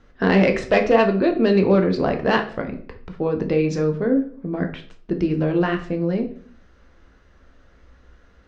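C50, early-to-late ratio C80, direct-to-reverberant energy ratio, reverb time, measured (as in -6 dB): 11.0 dB, 15.5 dB, 4.0 dB, 0.50 s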